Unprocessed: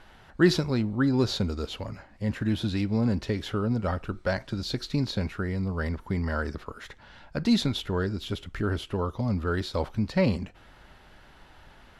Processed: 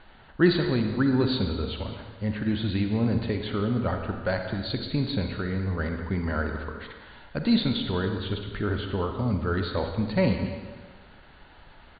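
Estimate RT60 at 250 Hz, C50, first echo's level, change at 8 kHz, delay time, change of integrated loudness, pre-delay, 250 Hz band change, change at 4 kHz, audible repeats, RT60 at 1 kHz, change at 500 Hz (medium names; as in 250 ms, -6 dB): 1.4 s, 5.0 dB, -15.0 dB, under -35 dB, 201 ms, +1.0 dB, 39 ms, +1.0 dB, +1.0 dB, 1, 1.5 s, +1.5 dB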